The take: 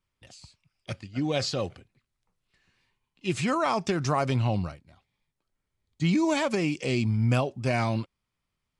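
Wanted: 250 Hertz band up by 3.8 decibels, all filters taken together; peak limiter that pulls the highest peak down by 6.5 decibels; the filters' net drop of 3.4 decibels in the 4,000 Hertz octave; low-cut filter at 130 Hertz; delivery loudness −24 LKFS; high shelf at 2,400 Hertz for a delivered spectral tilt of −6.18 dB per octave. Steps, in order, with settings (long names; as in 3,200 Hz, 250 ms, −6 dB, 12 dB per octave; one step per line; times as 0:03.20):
high-pass filter 130 Hz
parametric band 250 Hz +5.5 dB
high-shelf EQ 2,400 Hz +4 dB
parametric band 4,000 Hz −8.5 dB
level +3.5 dB
brickwall limiter −13.5 dBFS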